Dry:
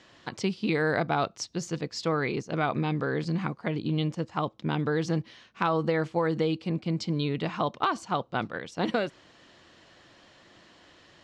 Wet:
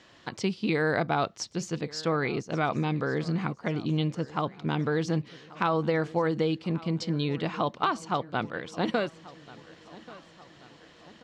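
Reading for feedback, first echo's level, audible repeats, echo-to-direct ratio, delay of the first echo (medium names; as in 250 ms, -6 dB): 52%, -20.0 dB, 3, -18.5 dB, 1135 ms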